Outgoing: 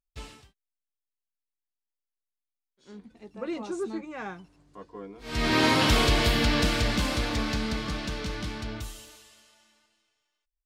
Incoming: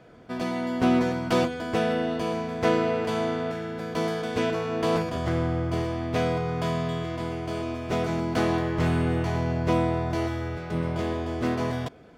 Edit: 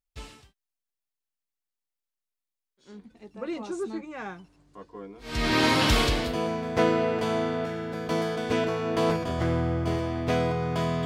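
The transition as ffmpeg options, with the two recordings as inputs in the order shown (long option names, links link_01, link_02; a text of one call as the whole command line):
ffmpeg -i cue0.wav -i cue1.wav -filter_complex "[0:a]apad=whole_dur=11.05,atrim=end=11.05,atrim=end=6.38,asetpts=PTS-STARTPTS[link_01];[1:a]atrim=start=1.86:end=6.91,asetpts=PTS-STARTPTS[link_02];[link_01][link_02]acrossfade=duration=0.38:curve1=tri:curve2=tri" out.wav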